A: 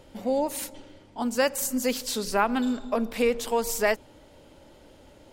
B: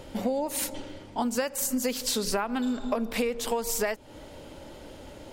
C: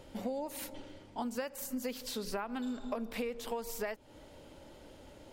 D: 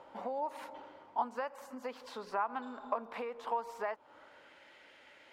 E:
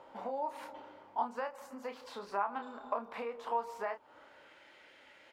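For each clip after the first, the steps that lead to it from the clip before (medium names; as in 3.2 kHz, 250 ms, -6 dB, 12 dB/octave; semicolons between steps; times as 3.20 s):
compression 12:1, threshold -32 dBFS, peak gain reduction 15.5 dB; trim +7.5 dB
dynamic bell 7.7 kHz, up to -7 dB, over -45 dBFS, Q 0.88; trim -9 dB
band-pass sweep 1 kHz -> 2 kHz, 3.92–4.64 s; trim +9.5 dB
doubling 30 ms -7 dB; trim -1 dB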